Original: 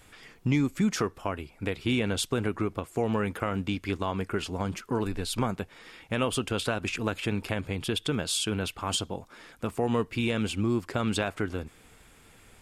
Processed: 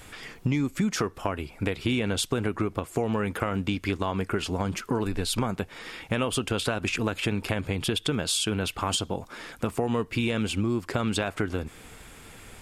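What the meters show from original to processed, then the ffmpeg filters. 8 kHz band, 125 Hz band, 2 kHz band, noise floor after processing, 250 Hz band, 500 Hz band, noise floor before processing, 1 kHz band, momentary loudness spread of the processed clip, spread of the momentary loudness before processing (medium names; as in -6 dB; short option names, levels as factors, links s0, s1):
+2.5 dB, +2.0 dB, +2.0 dB, -50 dBFS, +1.0 dB, +1.0 dB, -57 dBFS, +1.5 dB, 9 LU, 8 LU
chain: -af "acompressor=threshold=0.02:ratio=3,volume=2.66"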